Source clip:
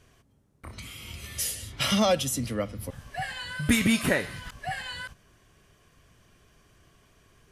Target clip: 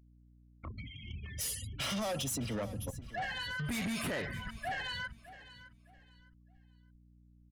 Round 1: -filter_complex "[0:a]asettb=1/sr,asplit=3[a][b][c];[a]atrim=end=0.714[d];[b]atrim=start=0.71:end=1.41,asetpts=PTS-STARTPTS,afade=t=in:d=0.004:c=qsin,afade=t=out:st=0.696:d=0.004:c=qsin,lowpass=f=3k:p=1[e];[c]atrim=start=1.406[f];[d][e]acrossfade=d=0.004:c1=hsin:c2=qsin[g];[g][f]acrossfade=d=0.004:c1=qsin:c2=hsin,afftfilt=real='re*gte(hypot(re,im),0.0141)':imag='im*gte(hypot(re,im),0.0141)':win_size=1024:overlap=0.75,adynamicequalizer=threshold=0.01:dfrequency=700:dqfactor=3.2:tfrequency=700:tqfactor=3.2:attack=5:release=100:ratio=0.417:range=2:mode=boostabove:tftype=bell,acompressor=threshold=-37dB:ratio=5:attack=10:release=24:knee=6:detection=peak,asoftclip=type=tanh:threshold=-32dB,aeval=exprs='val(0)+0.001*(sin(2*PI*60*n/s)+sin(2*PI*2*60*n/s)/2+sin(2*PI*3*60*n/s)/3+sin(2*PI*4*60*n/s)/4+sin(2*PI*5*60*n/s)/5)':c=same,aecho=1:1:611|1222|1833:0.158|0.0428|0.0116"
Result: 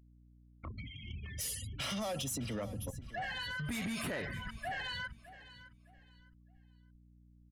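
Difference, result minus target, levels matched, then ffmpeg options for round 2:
compressor: peak gain reduction +5 dB
-filter_complex "[0:a]asettb=1/sr,asplit=3[a][b][c];[a]atrim=end=0.714[d];[b]atrim=start=0.71:end=1.41,asetpts=PTS-STARTPTS,afade=t=in:d=0.004:c=qsin,afade=t=out:st=0.696:d=0.004:c=qsin,lowpass=f=3k:p=1[e];[c]atrim=start=1.406[f];[d][e]acrossfade=d=0.004:c1=hsin:c2=qsin[g];[g][f]acrossfade=d=0.004:c1=qsin:c2=hsin,afftfilt=real='re*gte(hypot(re,im),0.0141)':imag='im*gte(hypot(re,im),0.0141)':win_size=1024:overlap=0.75,adynamicequalizer=threshold=0.01:dfrequency=700:dqfactor=3.2:tfrequency=700:tqfactor=3.2:attack=5:release=100:ratio=0.417:range=2:mode=boostabove:tftype=bell,acompressor=threshold=-31dB:ratio=5:attack=10:release=24:knee=6:detection=peak,asoftclip=type=tanh:threshold=-32dB,aeval=exprs='val(0)+0.001*(sin(2*PI*60*n/s)+sin(2*PI*2*60*n/s)/2+sin(2*PI*3*60*n/s)/3+sin(2*PI*4*60*n/s)/4+sin(2*PI*5*60*n/s)/5)':c=same,aecho=1:1:611|1222|1833:0.158|0.0428|0.0116"

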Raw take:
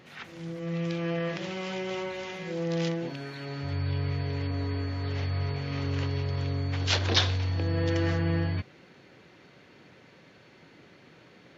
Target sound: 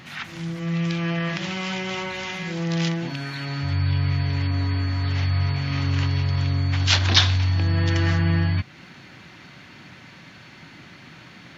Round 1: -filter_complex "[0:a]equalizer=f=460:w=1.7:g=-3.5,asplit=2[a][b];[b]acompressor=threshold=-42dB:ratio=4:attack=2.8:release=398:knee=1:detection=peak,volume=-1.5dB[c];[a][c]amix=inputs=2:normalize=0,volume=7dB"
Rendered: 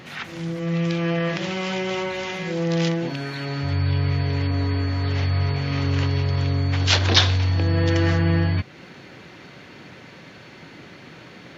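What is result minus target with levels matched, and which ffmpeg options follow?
500 Hz band +6.5 dB
-filter_complex "[0:a]equalizer=f=460:w=1.7:g=-15,asplit=2[a][b];[b]acompressor=threshold=-42dB:ratio=4:attack=2.8:release=398:knee=1:detection=peak,volume=-1.5dB[c];[a][c]amix=inputs=2:normalize=0,volume=7dB"

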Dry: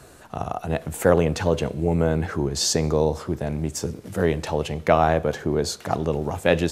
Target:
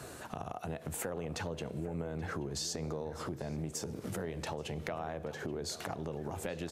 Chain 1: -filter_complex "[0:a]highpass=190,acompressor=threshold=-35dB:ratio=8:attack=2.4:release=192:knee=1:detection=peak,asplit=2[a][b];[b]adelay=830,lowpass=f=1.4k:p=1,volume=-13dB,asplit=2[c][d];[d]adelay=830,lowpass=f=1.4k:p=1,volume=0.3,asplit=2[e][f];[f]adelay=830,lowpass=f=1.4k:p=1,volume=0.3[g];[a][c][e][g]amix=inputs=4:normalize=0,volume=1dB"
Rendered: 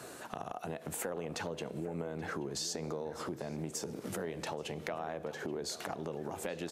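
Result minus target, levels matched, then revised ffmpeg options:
125 Hz band -4.0 dB
-filter_complex "[0:a]highpass=76,acompressor=threshold=-35dB:ratio=8:attack=2.4:release=192:knee=1:detection=peak,asplit=2[a][b];[b]adelay=830,lowpass=f=1.4k:p=1,volume=-13dB,asplit=2[c][d];[d]adelay=830,lowpass=f=1.4k:p=1,volume=0.3,asplit=2[e][f];[f]adelay=830,lowpass=f=1.4k:p=1,volume=0.3[g];[a][c][e][g]amix=inputs=4:normalize=0,volume=1dB"

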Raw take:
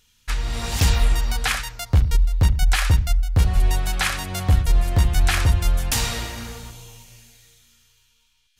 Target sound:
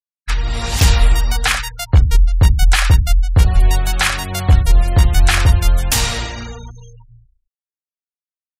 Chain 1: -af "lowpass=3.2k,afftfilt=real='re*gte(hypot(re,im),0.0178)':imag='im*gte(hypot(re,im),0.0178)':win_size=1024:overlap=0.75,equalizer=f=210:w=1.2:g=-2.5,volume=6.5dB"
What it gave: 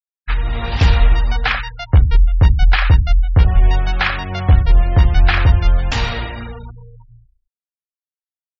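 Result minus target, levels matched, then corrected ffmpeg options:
4000 Hz band -4.0 dB
-af "afftfilt=real='re*gte(hypot(re,im),0.0178)':imag='im*gte(hypot(re,im),0.0178)':win_size=1024:overlap=0.75,equalizer=f=210:w=1.2:g=-2.5,volume=6.5dB"

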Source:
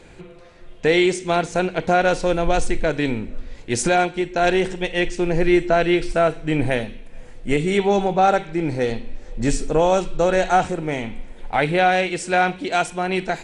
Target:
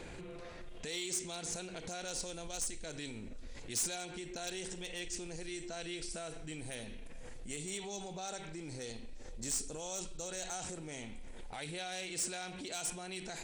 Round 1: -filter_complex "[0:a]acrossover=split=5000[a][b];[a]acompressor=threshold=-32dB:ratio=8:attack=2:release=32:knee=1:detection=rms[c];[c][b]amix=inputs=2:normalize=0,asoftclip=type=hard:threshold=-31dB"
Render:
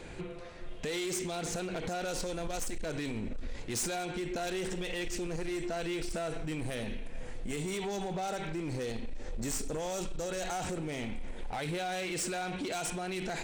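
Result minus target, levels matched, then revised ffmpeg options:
compressor: peak gain reduction -10 dB
-filter_complex "[0:a]acrossover=split=5000[a][b];[a]acompressor=threshold=-43.5dB:ratio=8:attack=2:release=32:knee=1:detection=rms[c];[c][b]amix=inputs=2:normalize=0,asoftclip=type=hard:threshold=-31dB"

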